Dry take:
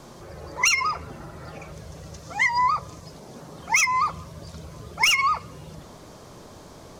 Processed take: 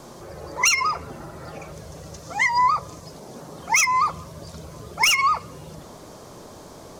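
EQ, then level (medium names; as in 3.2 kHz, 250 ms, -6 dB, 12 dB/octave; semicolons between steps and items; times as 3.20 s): bass shelf 220 Hz -7 dB; peaking EQ 2.5 kHz -5 dB 2.5 oct; +5.5 dB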